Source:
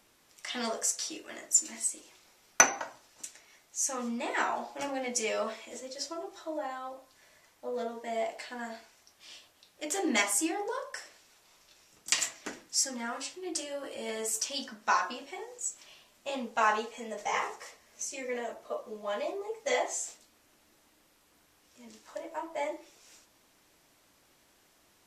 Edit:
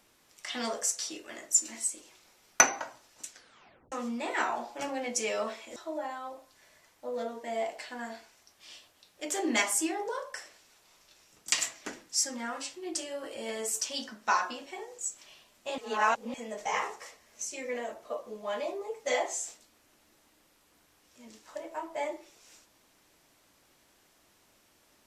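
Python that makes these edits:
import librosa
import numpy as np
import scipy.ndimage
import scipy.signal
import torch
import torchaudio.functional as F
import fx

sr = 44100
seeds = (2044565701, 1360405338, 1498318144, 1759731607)

y = fx.edit(x, sr, fx.tape_stop(start_s=3.28, length_s=0.64),
    fx.cut(start_s=5.76, length_s=0.6),
    fx.reverse_span(start_s=16.38, length_s=0.56), tone=tone)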